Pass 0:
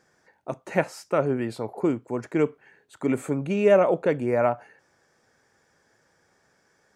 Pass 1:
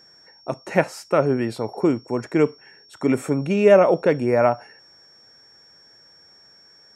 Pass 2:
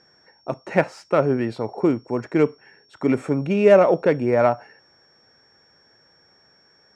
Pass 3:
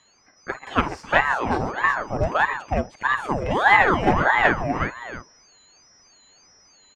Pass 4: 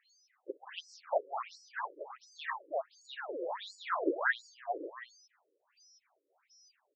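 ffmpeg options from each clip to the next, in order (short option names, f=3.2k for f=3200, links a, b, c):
-af "aeval=exprs='val(0)+0.002*sin(2*PI*5500*n/s)':c=same,volume=4.5dB"
-af "adynamicsmooth=sensitivity=2:basefreq=4.7k"
-filter_complex "[0:a]asplit=2[a][b];[b]aecho=0:1:50|135|366|372|686:0.251|0.2|0.562|0.422|0.178[c];[a][c]amix=inputs=2:normalize=0,aeval=exprs='val(0)*sin(2*PI*830*n/s+830*0.75/1.6*sin(2*PI*1.6*n/s))':c=same"
-af "afftfilt=real='re*between(b*sr/1024,390*pow(6300/390,0.5+0.5*sin(2*PI*1.4*pts/sr))/1.41,390*pow(6300/390,0.5+0.5*sin(2*PI*1.4*pts/sr))*1.41)':imag='im*between(b*sr/1024,390*pow(6300/390,0.5+0.5*sin(2*PI*1.4*pts/sr))/1.41,390*pow(6300/390,0.5+0.5*sin(2*PI*1.4*pts/sr))*1.41)':win_size=1024:overlap=0.75,volume=-7dB"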